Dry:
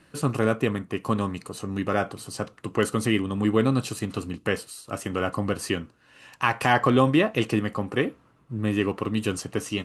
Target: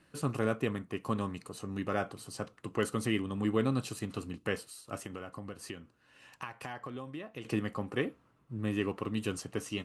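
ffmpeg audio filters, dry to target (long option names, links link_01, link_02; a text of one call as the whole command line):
ffmpeg -i in.wav -filter_complex "[0:a]asettb=1/sr,asplit=3[link_01][link_02][link_03];[link_01]atrim=end=5.004[link_04];[link_02]atrim=start=5:end=7.45,asetpts=PTS-STARTPTS,afade=type=in:duration=0.004:curve=qsin,afade=type=out:start_time=2.446:duration=0.004:curve=qsin,acompressor=threshold=-31dB:ratio=8[link_05];[link_03]atrim=start=7.446[link_06];[link_04][link_05]acrossfade=duration=0.004:curve1=hsin:curve2=qsin[link_07];[link_07][link_06]acrossfade=duration=0.004:curve1=qsin:curve2=hsin,volume=-8dB" out.wav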